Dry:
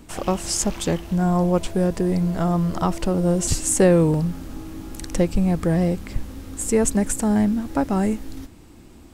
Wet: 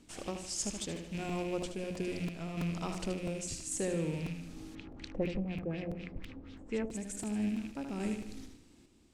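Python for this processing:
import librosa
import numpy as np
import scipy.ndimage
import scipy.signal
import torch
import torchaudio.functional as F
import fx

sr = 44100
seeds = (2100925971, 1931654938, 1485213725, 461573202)

y = fx.rattle_buzz(x, sr, strikes_db=-29.0, level_db=-25.0)
y = fx.low_shelf(y, sr, hz=160.0, db=-11.5)
y = fx.quant_float(y, sr, bits=4)
y = scipy.signal.sosfilt(scipy.signal.butter(2, 7900.0, 'lowpass', fs=sr, output='sos'), y)
y = fx.peak_eq(y, sr, hz=950.0, db=-10.5, octaves=2.4)
y = fx.hum_notches(y, sr, base_hz=60, count=3)
y = fx.echo_feedback(y, sr, ms=76, feedback_pct=48, wet_db=-7.0)
y = fx.tremolo_random(y, sr, seeds[0], hz=3.5, depth_pct=55)
y = fx.rider(y, sr, range_db=3, speed_s=0.5)
y = fx.filter_lfo_lowpass(y, sr, shape='sine', hz=4.1, low_hz=620.0, high_hz=3700.0, q=1.8, at=(4.75, 6.91))
y = fx.buffer_crackle(y, sr, first_s=0.96, period_s=0.33, block=128, kind='repeat')
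y = F.gain(torch.from_numpy(y), -8.0).numpy()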